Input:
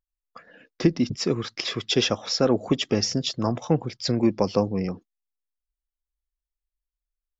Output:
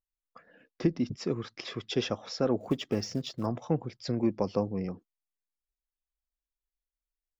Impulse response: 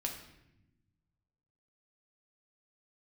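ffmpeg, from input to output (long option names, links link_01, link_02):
-filter_complex "[0:a]asettb=1/sr,asplit=3[link_01][link_02][link_03];[link_01]atrim=end=2.604[link_04];[link_02]atrim=start=2.6:end=3.46,asetpts=PTS-STARTPTS,afade=type=in:duration=0.004:curve=qsin,afade=type=out:start_time=0.856:duration=0.004:curve=qsin,acrusher=bits=6:mode=log:mix=0:aa=0.000001[link_05];[link_03]atrim=start=3.456[link_06];[link_04][link_05]acrossfade=duration=0.004:curve1=hsin:curve2=qsin[link_07];[link_07][link_06]acrossfade=duration=0.004:curve1=qsin:curve2=hsin,highshelf=frequency=2700:gain=-8.5,volume=-6.5dB"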